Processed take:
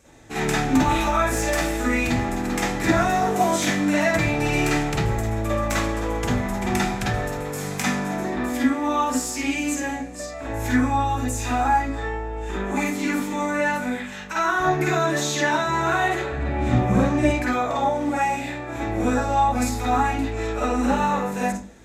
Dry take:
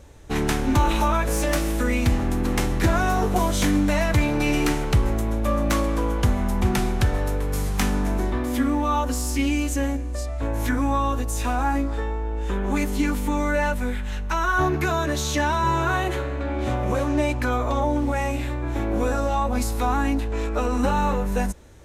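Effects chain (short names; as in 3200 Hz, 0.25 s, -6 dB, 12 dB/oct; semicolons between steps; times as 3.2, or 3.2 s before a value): 16.32–17.24 tone controls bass +14 dB, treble -2 dB; reverb RT60 0.40 s, pre-delay 44 ms, DRR -6.5 dB; gain -3.5 dB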